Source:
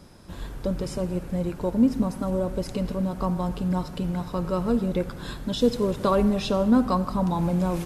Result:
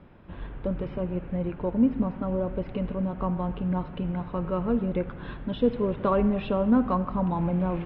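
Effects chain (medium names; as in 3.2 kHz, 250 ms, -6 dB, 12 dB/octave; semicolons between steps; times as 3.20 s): steep low-pass 3 kHz 36 dB/octave; trim -2 dB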